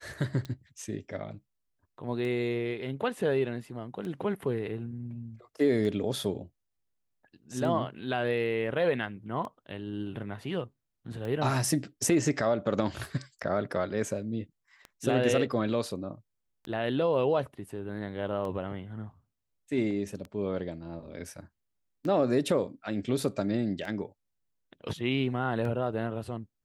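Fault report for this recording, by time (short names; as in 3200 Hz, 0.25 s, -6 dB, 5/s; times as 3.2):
tick 33 1/3 rpm -26 dBFS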